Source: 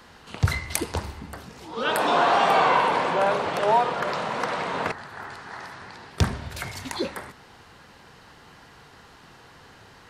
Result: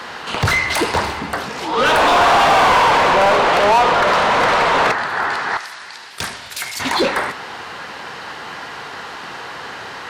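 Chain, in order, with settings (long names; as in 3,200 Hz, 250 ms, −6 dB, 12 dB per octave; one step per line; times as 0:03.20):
0:05.57–0:06.80: first-order pre-emphasis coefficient 0.9
mid-hump overdrive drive 27 dB, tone 3,100 Hz, clips at −7.5 dBFS
flanger 1.6 Hz, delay 6.7 ms, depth 9.8 ms, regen −85%
level +6 dB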